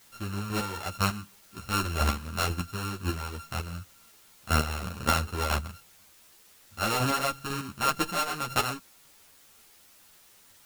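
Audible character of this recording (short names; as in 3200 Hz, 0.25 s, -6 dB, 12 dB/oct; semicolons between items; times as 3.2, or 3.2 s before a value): a buzz of ramps at a fixed pitch in blocks of 32 samples; chopped level 2 Hz, depth 60%, duty 20%; a quantiser's noise floor 10-bit, dither triangular; a shimmering, thickened sound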